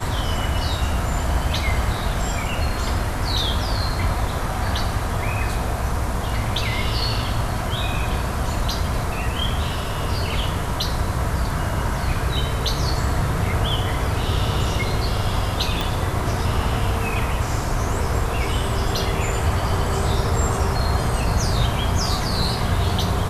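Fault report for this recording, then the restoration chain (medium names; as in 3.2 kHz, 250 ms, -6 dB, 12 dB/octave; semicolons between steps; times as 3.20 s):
15.81 s: pop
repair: de-click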